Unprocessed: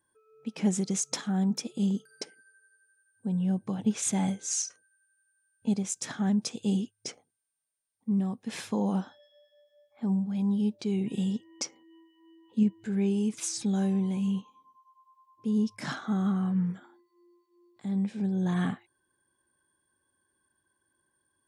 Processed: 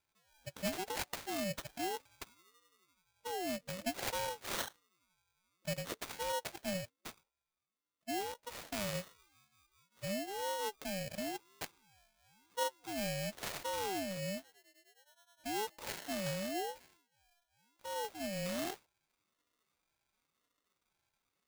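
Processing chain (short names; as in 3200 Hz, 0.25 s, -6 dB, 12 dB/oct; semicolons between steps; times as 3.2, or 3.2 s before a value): sample-rate reducer 2400 Hz, jitter 0%; passive tone stack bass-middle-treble 5-5-5; ring modulator with a swept carrier 540 Hz, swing 35%, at 0.95 Hz; gain +8 dB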